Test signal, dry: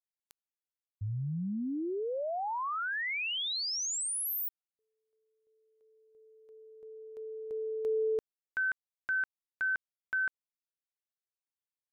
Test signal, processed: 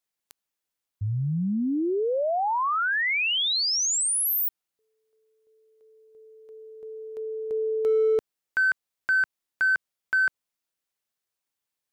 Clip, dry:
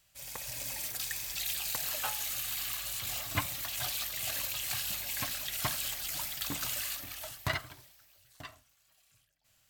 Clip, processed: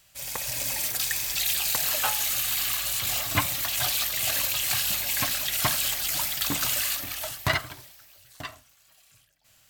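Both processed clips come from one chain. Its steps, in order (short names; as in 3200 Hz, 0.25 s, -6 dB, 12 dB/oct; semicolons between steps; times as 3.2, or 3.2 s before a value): low shelf 110 Hz -3.5 dB; in parallel at -5 dB: hard clip -29.5 dBFS; on the sum: gain +5.5 dB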